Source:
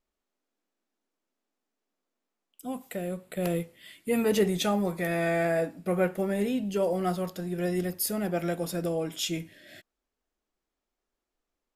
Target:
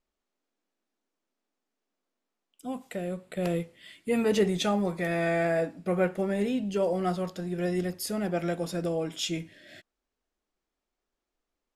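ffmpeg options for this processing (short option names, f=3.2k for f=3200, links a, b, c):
-af "lowpass=8.1k"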